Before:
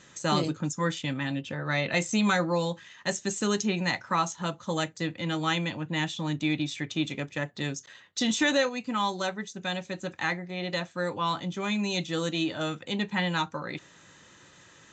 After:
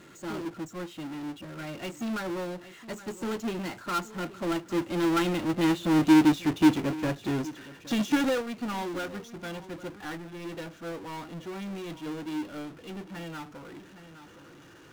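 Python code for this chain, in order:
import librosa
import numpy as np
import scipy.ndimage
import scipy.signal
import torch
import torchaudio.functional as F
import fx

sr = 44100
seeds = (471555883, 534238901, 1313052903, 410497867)

p1 = fx.doppler_pass(x, sr, speed_mps=20, closest_m=18.0, pass_at_s=6.39)
p2 = fx.high_shelf(p1, sr, hz=2100.0, db=-12.0)
p3 = fx.small_body(p2, sr, hz=(330.0, 1400.0, 2800.0), ring_ms=25, db=10)
p4 = p3 + fx.echo_single(p3, sr, ms=817, db=-21.5, dry=0)
p5 = fx.power_curve(p4, sr, exponent=0.35)
y = fx.upward_expand(p5, sr, threshold_db=-26.0, expansion=2.5)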